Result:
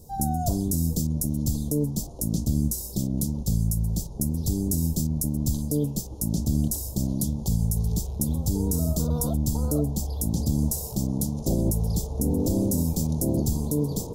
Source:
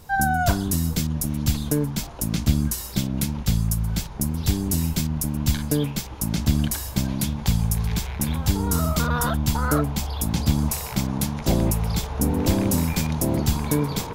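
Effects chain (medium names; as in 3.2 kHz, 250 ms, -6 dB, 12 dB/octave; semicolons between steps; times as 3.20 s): Chebyshev band-stop 510–6500 Hz, order 2; peak limiter -14.5 dBFS, peak gain reduction 6.5 dB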